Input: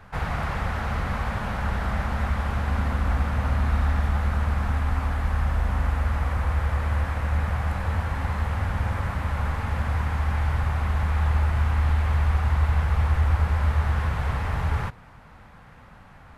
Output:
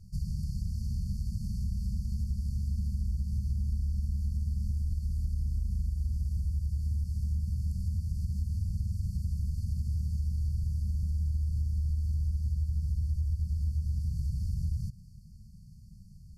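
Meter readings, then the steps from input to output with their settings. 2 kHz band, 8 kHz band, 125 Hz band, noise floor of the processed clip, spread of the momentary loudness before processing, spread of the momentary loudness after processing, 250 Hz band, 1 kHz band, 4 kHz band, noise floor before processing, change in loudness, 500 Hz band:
under -40 dB, n/a, -6.5 dB, -51 dBFS, 5 LU, 3 LU, -8.5 dB, under -40 dB, -15.0 dB, -48 dBFS, -7.5 dB, under -40 dB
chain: compressor, threshold -27 dBFS, peak gain reduction 11 dB; brick-wall FIR band-stop 220–4300 Hz

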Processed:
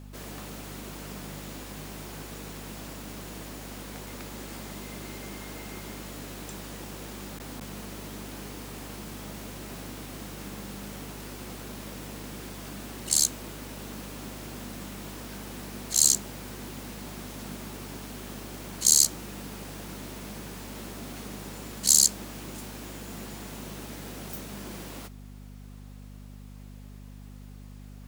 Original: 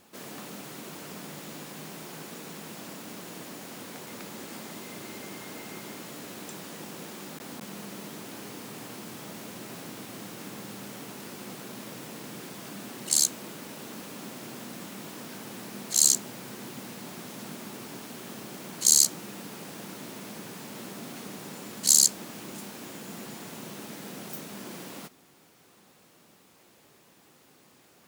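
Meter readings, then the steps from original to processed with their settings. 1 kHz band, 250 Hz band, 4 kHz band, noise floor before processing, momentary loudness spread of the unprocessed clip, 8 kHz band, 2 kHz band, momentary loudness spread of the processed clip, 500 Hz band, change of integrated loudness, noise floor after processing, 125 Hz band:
0.0 dB, +1.0 dB, 0.0 dB, -59 dBFS, 18 LU, 0.0 dB, 0.0 dB, 19 LU, 0.0 dB, 0.0 dB, -45 dBFS, +5.5 dB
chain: buzz 50 Hz, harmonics 5, -45 dBFS -4 dB/oct

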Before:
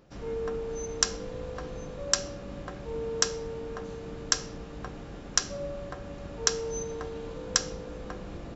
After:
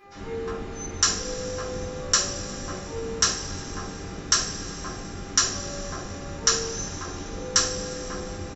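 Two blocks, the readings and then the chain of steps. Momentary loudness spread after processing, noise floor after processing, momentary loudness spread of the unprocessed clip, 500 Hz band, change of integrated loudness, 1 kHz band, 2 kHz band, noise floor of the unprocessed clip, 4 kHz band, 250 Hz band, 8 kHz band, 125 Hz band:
12 LU, -37 dBFS, 12 LU, +1.0 dB, +6.0 dB, +7.0 dB, +6.0 dB, -42 dBFS, +6.5 dB, +5.0 dB, n/a, +5.5 dB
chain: bands offset in time highs, lows 40 ms, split 690 Hz; buzz 400 Hz, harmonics 6, -58 dBFS -3 dB/oct; two-slope reverb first 0.31 s, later 3.1 s, from -18 dB, DRR -8 dB; gain -1.5 dB

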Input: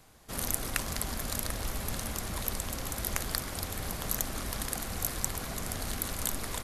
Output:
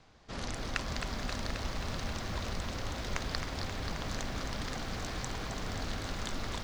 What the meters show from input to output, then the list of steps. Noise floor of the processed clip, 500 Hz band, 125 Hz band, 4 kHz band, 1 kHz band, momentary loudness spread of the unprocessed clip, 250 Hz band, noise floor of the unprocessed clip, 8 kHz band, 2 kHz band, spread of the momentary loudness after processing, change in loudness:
-41 dBFS, -0.5 dB, 0.0 dB, -1.0 dB, -0.5 dB, 4 LU, 0.0 dB, -40 dBFS, -11.5 dB, 0.0 dB, 2 LU, -4.0 dB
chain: LPF 5600 Hz 24 dB/oct; lo-fi delay 0.266 s, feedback 80%, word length 9-bit, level -7.5 dB; gain -1.5 dB

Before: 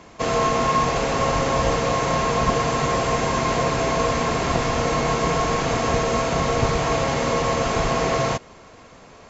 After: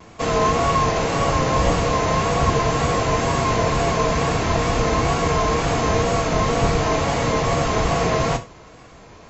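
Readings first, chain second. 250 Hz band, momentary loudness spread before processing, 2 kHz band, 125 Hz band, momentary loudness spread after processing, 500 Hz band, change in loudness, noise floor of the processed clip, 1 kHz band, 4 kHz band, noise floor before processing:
+2.0 dB, 1 LU, +0.5 dB, +4.0 dB, 1 LU, +1.0 dB, +1.5 dB, -44 dBFS, +1.0 dB, +1.0 dB, -46 dBFS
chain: octaver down 1 oct, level 0 dB; wow and flutter 60 cents; non-linear reverb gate 0.12 s falling, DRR 7 dB

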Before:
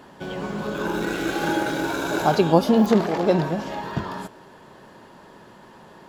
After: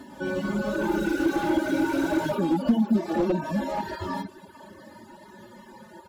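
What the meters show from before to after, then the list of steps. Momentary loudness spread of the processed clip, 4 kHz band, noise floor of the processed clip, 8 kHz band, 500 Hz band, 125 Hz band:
9 LU, -7.0 dB, -50 dBFS, n/a, -5.5 dB, -6.0 dB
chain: median-filter separation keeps harmonic; compressor 6:1, threshold -24 dBFS, peak gain reduction 11 dB; high shelf 6900 Hz +8.5 dB; comb 3.4 ms, depth 75%; feedback echo 0.231 s, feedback 52%, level -15 dB; reverb removal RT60 0.82 s; low shelf 350 Hz +7.5 dB; slew limiter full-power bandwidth 51 Hz

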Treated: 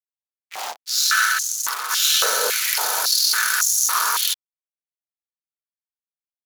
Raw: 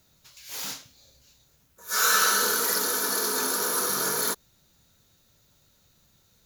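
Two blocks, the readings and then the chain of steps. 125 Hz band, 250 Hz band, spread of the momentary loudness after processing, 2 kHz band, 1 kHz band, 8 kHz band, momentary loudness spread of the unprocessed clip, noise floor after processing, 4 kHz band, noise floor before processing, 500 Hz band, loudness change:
under -15 dB, under -15 dB, 12 LU, +7.0 dB, +5.0 dB, +7.0 dB, 15 LU, under -85 dBFS, +9.5 dB, -64 dBFS, 0.0 dB, +6.0 dB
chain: power-law curve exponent 1.4; high shelf 3000 Hz +7 dB; reverse echo 1.044 s -8.5 dB; in parallel at +2 dB: negative-ratio compressor -29 dBFS, ratio -1; on the sum: backlash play -18.5 dBFS; stepped high-pass 3.6 Hz 540–6400 Hz

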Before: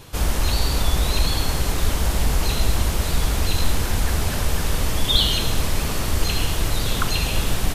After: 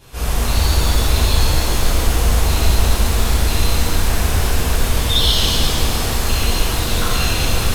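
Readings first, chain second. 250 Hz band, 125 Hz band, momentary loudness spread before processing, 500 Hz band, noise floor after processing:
+4.0 dB, +5.0 dB, 4 LU, +5.0 dB, -20 dBFS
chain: shimmer reverb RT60 2.2 s, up +7 st, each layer -8 dB, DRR -11.5 dB; gain -7.5 dB

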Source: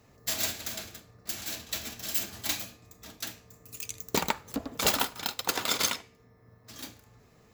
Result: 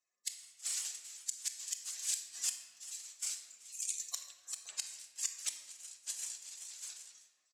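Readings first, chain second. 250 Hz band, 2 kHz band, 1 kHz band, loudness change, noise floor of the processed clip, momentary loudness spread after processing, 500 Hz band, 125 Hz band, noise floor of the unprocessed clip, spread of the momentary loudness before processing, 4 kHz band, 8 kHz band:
under -40 dB, -17.5 dB, -28.0 dB, -8.5 dB, -77 dBFS, 9 LU, under -30 dB, under -40 dB, -60 dBFS, 18 LU, -11.0 dB, -1.5 dB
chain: per-bin expansion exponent 2; on a send: frequency-shifting echo 0.387 s, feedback 48%, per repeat +95 Hz, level -23 dB; on the sum: spectral gate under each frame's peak -20 dB weak; bell 7500 Hz +12 dB 0.76 oct; transient shaper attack -5 dB, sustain +6 dB; de-hum 102.9 Hz, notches 18; flipped gate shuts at -40 dBFS, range -30 dB; weighting filter ITU-R 468; shoebox room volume 1100 m³, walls mixed, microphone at 0.99 m; gain +9 dB

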